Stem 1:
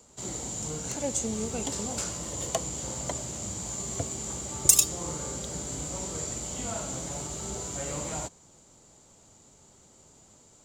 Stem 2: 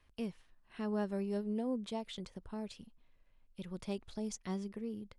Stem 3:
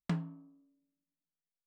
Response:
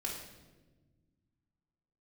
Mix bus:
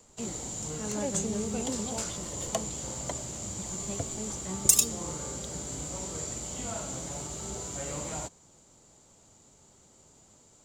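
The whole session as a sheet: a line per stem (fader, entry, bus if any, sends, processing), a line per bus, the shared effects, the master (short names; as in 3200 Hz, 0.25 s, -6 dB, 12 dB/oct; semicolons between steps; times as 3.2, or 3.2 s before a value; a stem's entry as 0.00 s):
-2.0 dB, 0.00 s, no send, dry
-0.5 dB, 0.00 s, no send, dry
-4.5 dB, 1.05 s, no send, dry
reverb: off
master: dry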